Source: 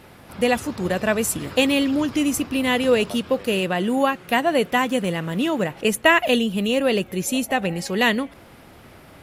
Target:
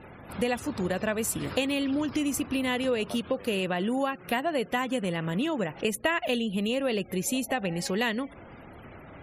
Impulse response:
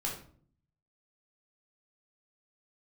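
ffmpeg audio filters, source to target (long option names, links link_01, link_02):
-af "acompressor=threshold=-27dB:ratio=3,afftfilt=real='re*gte(hypot(re,im),0.00398)':imag='im*gte(hypot(re,im),0.00398)':win_size=1024:overlap=0.75"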